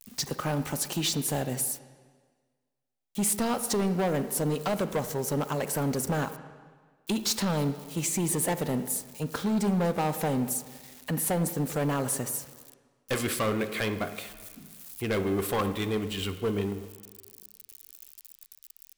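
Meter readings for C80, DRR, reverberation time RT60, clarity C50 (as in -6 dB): 12.5 dB, 10.5 dB, 1.6 s, 11.5 dB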